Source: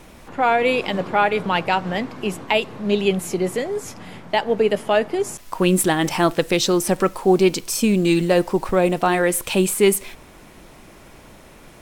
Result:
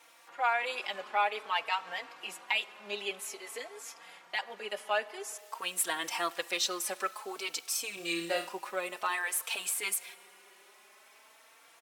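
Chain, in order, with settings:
high-pass filter 940 Hz 12 dB per octave
0:07.94–0:08.49: flutter between parallel walls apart 5.1 metres, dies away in 0.37 s
on a send at −20 dB: convolution reverb RT60 3.3 s, pre-delay 15 ms
on the sum: barber-pole flanger 3.9 ms +0.51 Hz
level −5.5 dB

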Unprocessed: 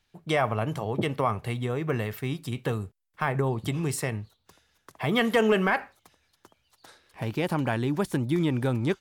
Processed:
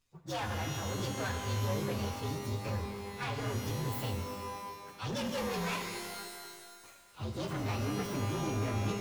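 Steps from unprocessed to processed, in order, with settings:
partials spread apart or drawn together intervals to 121%
soft clipping −31.5 dBFS, distortion −8 dB
reverb with rising layers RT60 1.7 s, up +12 semitones, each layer −2 dB, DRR 6 dB
level −2 dB

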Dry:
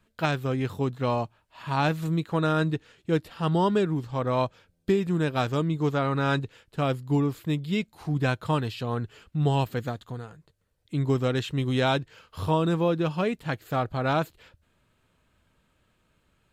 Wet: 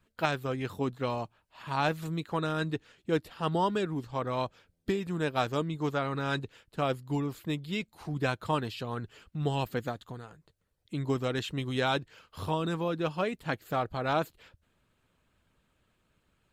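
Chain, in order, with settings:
harmonic and percussive parts rebalanced harmonic −7 dB
level −1 dB

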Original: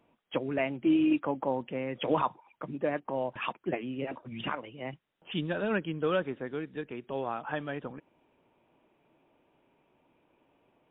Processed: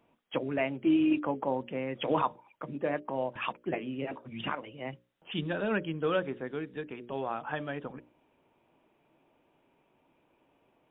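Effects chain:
mains-hum notches 60/120/180/240/300/360/420/480/540/600 Hz

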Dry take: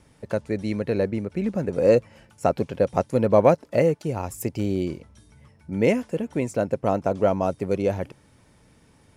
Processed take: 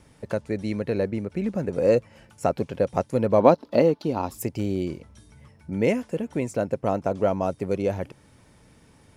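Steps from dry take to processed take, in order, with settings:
0:03.40–0:04.39: graphic EQ with 10 bands 125 Hz −6 dB, 250 Hz +9 dB, 1,000 Hz +7 dB, 2,000 Hz −5 dB, 4,000 Hz +12 dB, 8,000 Hz −11 dB
in parallel at −3 dB: downward compressor, threshold −33 dBFS, peak gain reduction 24 dB
on the sum: level −3 dB

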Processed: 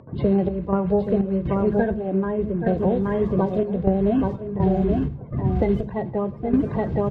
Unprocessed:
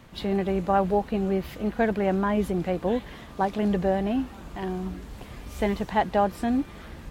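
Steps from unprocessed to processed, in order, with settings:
spectral magnitudes quantised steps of 30 dB
comb filter 1.9 ms, depth 30%
noise gate with hold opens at −41 dBFS
high-pass filter 91 Hz 24 dB per octave
single-tap delay 824 ms −7.5 dB
gate pattern "xx.xx.xx...xxxx." 62 BPM −12 dB
low-pass that shuts in the quiet parts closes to 1,200 Hz, open at −24 dBFS
downward compressor 6 to 1, threshold −30 dBFS, peak gain reduction 12.5 dB
spectral tilt −4.5 dB per octave
convolution reverb RT60 0.50 s, pre-delay 3 ms, DRR 11 dB
upward compression, threshold −46 dBFS
level +6 dB

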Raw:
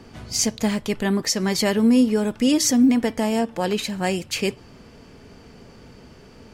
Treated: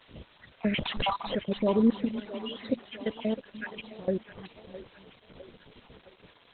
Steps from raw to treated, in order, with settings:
time-frequency cells dropped at random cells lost 70%
0:00.74–0:01.35: leveller curve on the samples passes 5
0:02.12–0:02.58: guitar amp tone stack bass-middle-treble 10-0-10
0:03.45–0:04.08: compressor whose output falls as the input rises −36 dBFS, ratio −1
background noise white −47 dBFS
hollow resonant body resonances 530/1,000/3,200 Hz, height 6 dB, ringing for 25 ms
on a send: echo with a time of its own for lows and highs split 310 Hz, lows 296 ms, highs 660 ms, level −13 dB
on the sum: level −4.5 dB
Opus 8 kbit/s 48,000 Hz

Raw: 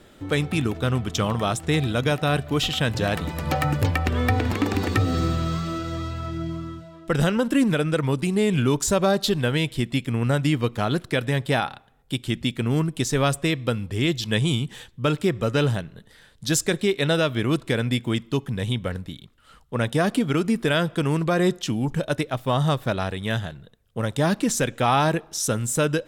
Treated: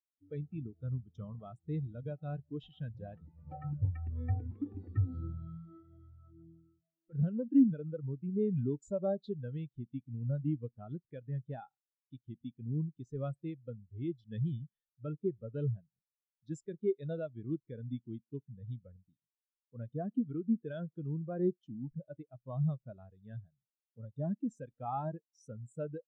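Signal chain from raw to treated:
0:05.77–0:07.14: gain into a clipping stage and back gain 24.5 dB
every bin expanded away from the loudest bin 2.5 to 1
level −7 dB

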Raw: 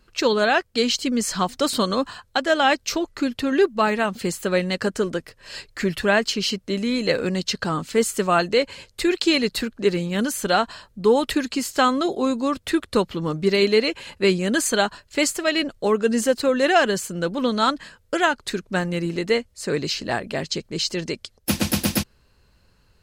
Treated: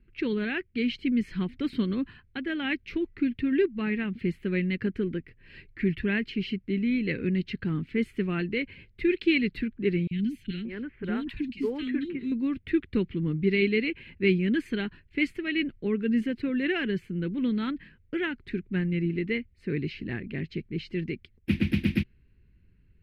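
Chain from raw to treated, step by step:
drawn EQ curve 150 Hz 0 dB, 370 Hz −4 dB, 620 Hz −26 dB, 1,200 Hz −21 dB, 2,200 Hz +2 dB, 7,000 Hz −16 dB, 13,000 Hz +7 dB
low-pass that shuts in the quiet parts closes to 1,500 Hz, open at −4 dBFS
0:10.07–0:12.32: three-band delay without the direct sound highs, lows, mids 40/580 ms, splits 300/2,300 Hz

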